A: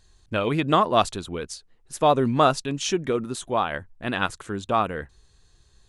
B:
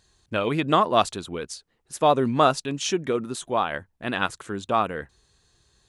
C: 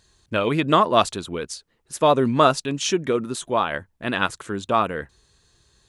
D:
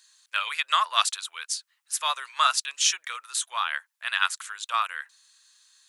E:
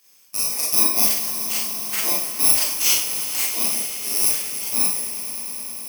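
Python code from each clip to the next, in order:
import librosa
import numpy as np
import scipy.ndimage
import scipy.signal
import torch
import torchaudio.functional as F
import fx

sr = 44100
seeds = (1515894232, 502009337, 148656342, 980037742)

y1 = fx.highpass(x, sr, hz=120.0, slope=6)
y2 = fx.notch(y1, sr, hz=760.0, q=12.0)
y2 = y2 * librosa.db_to_amplitude(3.0)
y3 = scipy.signal.sosfilt(scipy.signal.cheby2(4, 70, 260.0, 'highpass', fs=sr, output='sos'), y2)
y3 = fx.high_shelf(y3, sr, hz=3800.0, db=7.5)
y3 = y3 * librosa.db_to_amplitude(-1.0)
y4 = fx.bit_reversed(y3, sr, seeds[0], block=32)
y4 = fx.echo_swell(y4, sr, ms=103, loudest=5, wet_db=-16.0)
y4 = fx.rev_schroeder(y4, sr, rt60_s=0.49, comb_ms=29, drr_db=-5.0)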